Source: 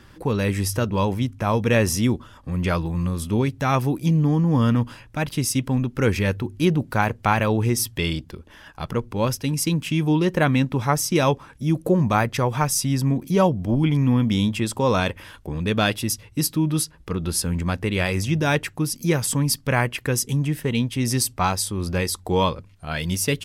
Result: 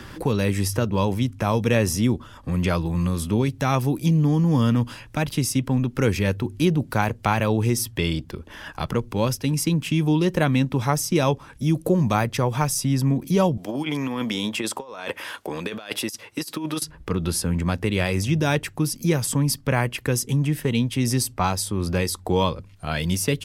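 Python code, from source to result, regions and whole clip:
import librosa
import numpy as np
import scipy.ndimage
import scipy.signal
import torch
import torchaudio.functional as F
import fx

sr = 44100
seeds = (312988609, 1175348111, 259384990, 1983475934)

y = fx.chain(x, sr, fx.highpass(hz=430.0, slope=12),
    fx.over_compress(threshold_db=-30.0, ratio=-0.5), at=(13.57, 16.82))
y = fx.dynamic_eq(y, sr, hz=1700.0, q=0.73, threshold_db=-33.0, ratio=4.0, max_db=-3)
y = fx.band_squash(y, sr, depth_pct=40)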